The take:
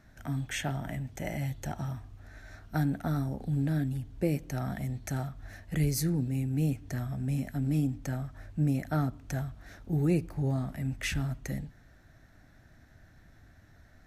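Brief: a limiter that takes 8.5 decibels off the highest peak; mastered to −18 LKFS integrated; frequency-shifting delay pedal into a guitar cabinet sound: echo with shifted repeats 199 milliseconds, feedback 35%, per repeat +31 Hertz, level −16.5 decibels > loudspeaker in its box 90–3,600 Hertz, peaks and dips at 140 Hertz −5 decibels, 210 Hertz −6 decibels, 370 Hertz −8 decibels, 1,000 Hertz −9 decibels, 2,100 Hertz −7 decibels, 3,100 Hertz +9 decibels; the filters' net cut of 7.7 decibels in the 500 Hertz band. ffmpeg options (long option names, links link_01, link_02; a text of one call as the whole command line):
ffmpeg -i in.wav -filter_complex "[0:a]equalizer=frequency=500:width_type=o:gain=-6.5,alimiter=level_in=2dB:limit=-24dB:level=0:latency=1,volume=-2dB,asplit=4[link_01][link_02][link_03][link_04];[link_02]adelay=199,afreqshift=31,volume=-16.5dB[link_05];[link_03]adelay=398,afreqshift=62,volume=-25.6dB[link_06];[link_04]adelay=597,afreqshift=93,volume=-34.7dB[link_07];[link_01][link_05][link_06][link_07]amix=inputs=4:normalize=0,highpass=90,equalizer=frequency=140:width_type=q:width=4:gain=-5,equalizer=frequency=210:width_type=q:width=4:gain=-6,equalizer=frequency=370:width_type=q:width=4:gain=-8,equalizer=frequency=1000:width_type=q:width=4:gain=-9,equalizer=frequency=2100:width_type=q:width=4:gain=-7,equalizer=frequency=3100:width_type=q:width=4:gain=9,lowpass=frequency=3600:width=0.5412,lowpass=frequency=3600:width=1.3066,volume=22.5dB" out.wav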